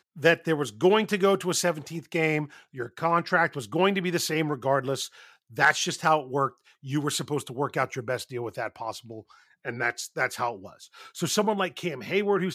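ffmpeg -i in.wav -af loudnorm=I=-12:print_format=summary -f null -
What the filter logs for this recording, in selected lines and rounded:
Input Integrated:    -26.8 LUFS
Input True Peak:      -6.2 dBTP
Input LRA:             5.6 LU
Input Threshold:     -37.4 LUFS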